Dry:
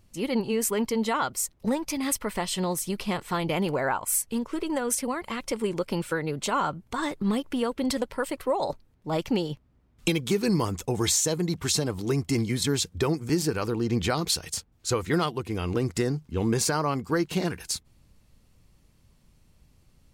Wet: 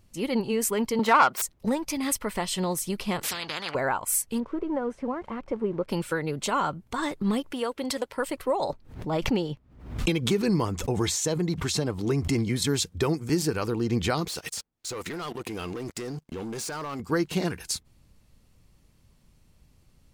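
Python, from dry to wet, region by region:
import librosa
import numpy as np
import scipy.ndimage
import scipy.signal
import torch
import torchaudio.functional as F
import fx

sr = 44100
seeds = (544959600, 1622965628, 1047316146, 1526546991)

y = fx.chain(x, sr, fx.self_delay(depth_ms=0.097),
    fx.highpass(hz=130.0, slope=24),
    fx.peak_eq(hz=1200.0, db=10.0, octaves=2.2), at=(0.99, 1.42))
y = fx.chain(y, sr, fx.env_lowpass_down(base_hz=2500.0, full_db=-25.0),
    fx.highpass(hz=120.0, slope=24),
    fx.spectral_comp(ratio=10.0), at=(3.23, 3.75))
y = fx.chain(y, sr, fx.crossing_spikes(level_db=-28.0),
    fx.lowpass(hz=1100.0, slope=12), at=(4.4, 5.89))
y = fx.chain(y, sr, fx.highpass(hz=150.0, slope=6),
    fx.peak_eq(hz=190.0, db=-8.0, octaves=1.0), at=(7.52, 8.18))
y = fx.chain(y, sr, fx.high_shelf(hz=5300.0, db=-8.5),
    fx.pre_swell(db_per_s=91.0), at=(8.7, 12.56))
y = fx.chain(y, sr, fx.peak_eq(hz=62.0, db=-14.5, octaves=2.4),
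    fx.leveller(passes=3),
    fx.level_steps(step_db=17), at=(14.28, 17.0))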